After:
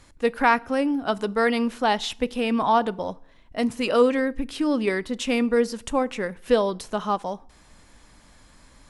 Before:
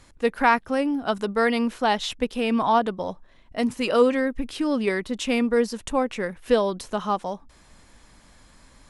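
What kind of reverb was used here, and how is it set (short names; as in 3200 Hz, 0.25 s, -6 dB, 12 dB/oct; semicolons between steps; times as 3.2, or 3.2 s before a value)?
FDN reverb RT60 0.62 s, low-frequency decay 1.2×, high-frequency decay 0.8×, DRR 19.5 dB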